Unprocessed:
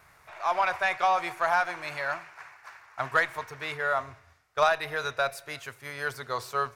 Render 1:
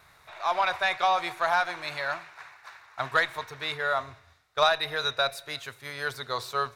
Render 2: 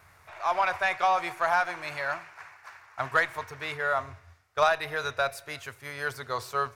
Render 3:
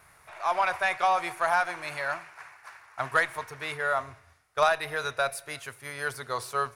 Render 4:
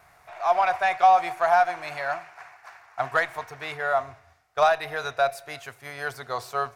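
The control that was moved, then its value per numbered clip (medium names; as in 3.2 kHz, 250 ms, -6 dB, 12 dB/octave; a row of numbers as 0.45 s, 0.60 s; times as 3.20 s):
peaking EQ, frequency: 3.8 kHz, 90 Hz, 9.9 kHz, 720 Hz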